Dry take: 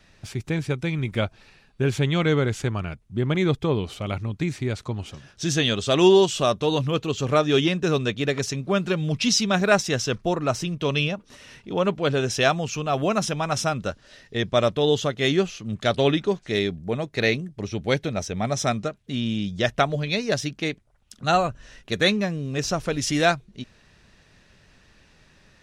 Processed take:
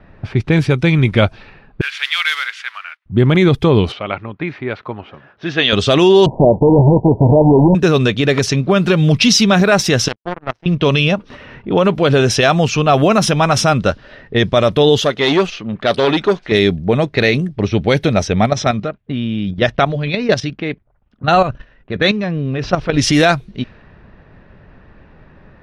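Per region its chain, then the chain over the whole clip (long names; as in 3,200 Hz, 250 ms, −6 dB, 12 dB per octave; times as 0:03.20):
0:01.81–0:03.06: one scale factor per block 5 bits + high-pass filter 1,500 Hz 24 dB per octave + high-shelf EQ 8,500 Hz +8.5 dB
0:03.92–0:05.73: high-pass filter 800 Hz 6 dB per octave + high-frequency loss of the air 150 metres
0:06.26–0:07.75: each half-wave held at its own peak + Chebyshev low-pass filter 960 Hz, order 8
0:10.08–0:10.66: high-shelf EQ 8,100 Hz +4.5 dB + power curve on the samples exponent 3
0:14.98–0:16.52: parametric band 85 Hz −12 dB 2.3 octaves + saturating transformer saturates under 1,200 Hz
0:18.46–0:22.94: low-pass filter 5,500 Hz + output level in coarse steps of 11 dB + noise gate −52 dBFS, range −6 dB
whole clip: low-pass that shuts in the quiet parts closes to 1,200 Hz, open at −20 dBFS; parametric band 7,300 Hz −8 dB 0.57 octaves; boost into a limiter +15 dB; level −1 dB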